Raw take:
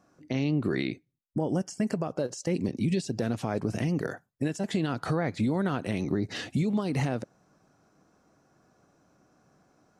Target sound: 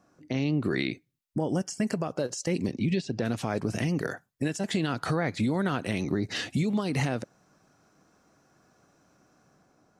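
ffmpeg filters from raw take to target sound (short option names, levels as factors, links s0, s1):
-filter_complex "[0:a]asplit=3[s0][s1][s2];[s0]afade=t=out:st=2.75:d=0.02[s3];[s1]lowpass=3900,afade=t=in:st=2.75:d=0.02,afade=t=out:st=3.24:d=0.02[s4];[s2]afade=t=in:st=3.24:d=0.02[s5];[s3][s4][s5]amix=inputs=3:normalize=0,acrossover=split=1300[s6][s7];[s7]dynaudnorm=f=130:g=9:m=1.68[s8];[s6][s8]amix=inputs=2:normalize=0"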